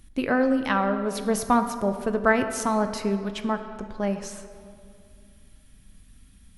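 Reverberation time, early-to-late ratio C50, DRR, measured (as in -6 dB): 2.3 s, 9.5 dB, 8.0 dB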